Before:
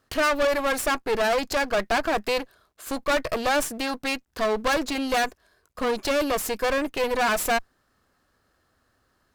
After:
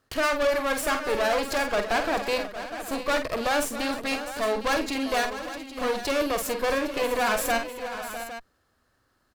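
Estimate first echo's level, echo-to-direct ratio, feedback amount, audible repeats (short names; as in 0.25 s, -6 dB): -7.5 dB, -5.0 dB, no steady repeat, 5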